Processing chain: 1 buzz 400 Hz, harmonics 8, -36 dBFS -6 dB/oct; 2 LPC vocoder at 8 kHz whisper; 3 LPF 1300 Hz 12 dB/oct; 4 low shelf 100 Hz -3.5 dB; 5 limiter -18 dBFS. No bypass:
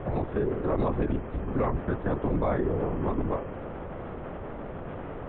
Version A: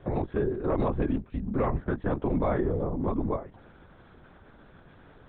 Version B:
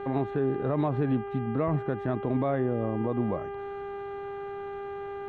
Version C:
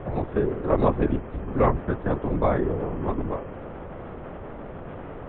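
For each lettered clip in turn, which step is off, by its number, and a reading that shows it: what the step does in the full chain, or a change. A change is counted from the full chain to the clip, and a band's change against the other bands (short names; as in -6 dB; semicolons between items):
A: 1, loudness change +1.0 LU; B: 2, momentary loudness spread change -1 LU; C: 5, crest factor change +8.0 dB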